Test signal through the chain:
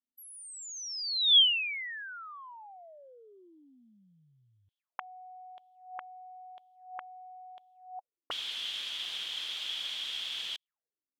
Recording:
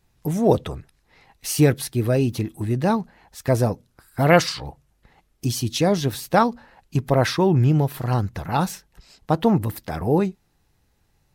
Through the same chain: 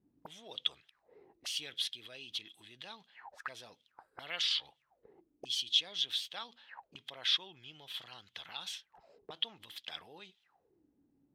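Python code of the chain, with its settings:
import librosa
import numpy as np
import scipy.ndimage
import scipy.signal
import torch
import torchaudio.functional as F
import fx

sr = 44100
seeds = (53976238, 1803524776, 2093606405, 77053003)

p1 = fx.over_compress(x, sr, threshold_db=-29.0, ratio=-1.0)
p2 = x + (p1 * 10.0 ** (1.5 / 20.0))
y = fx.auto_wah(p2, sr, base_hz=250.0, top_hz=3300.0, q=9.6, full_db=-21.5, direction='up')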